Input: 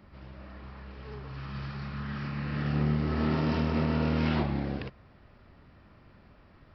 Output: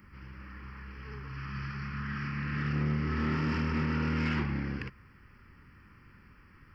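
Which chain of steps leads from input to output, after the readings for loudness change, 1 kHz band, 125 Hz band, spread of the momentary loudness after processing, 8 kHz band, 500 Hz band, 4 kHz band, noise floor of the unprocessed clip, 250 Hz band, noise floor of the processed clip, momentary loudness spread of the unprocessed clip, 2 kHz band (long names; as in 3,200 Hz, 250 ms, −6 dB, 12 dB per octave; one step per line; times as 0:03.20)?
−2.5 dB, −2.0 dB, −2.0 dB, 16 LU, can't be measured, −7.0 dB, −3.0 dB, −57 dBFS, −3.0 dB, −58 dBFS, 18 LU, +3.0 dB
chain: high-shelf EQ 2,000 Hz +11.5 dB
phaser with its sweep stopped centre 1,600 Hz, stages 4
soft clipping −22.5 dBFS, distortion −17 dB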